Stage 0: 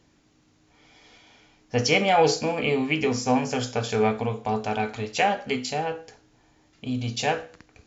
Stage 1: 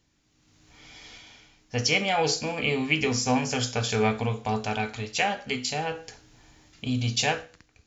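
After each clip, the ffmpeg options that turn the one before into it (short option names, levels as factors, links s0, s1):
-af "dynaudnorm=f=100:g=11:m=5.01,equalizer=f=480:w=0.32:g=-8.5,volume=0.668"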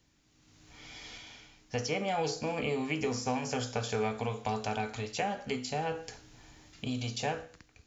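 -filter_complex "[0:a]acrossover=split=370|1400|5800[s0][s1][s2][s3];[s0]acompressor=threshold=0.0141:ratio=4[s4];[s1]acompressor=threshold=0.0251:ratio=4[s5];[s2]acompressor=threshold=0.00631:ratio=4[s6];[s3]acompressor=threshold=0.00447:ratio=4[s7];[s4][s5][s6][s7]amix=inputs=4:normalize=0"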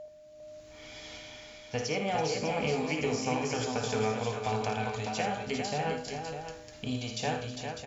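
-filter_complex "[0:a]aeval=exprs='val(0)+0.00794*sin(2*PI*610*n/s)':c=same,asplit=2[s0][s1];[s1]aecho=0:1:55|81|331|402|601:0.355|0.355|0.119|0.501|0.376[s2];[s0][s2]amix=inputs=2:normalize=0"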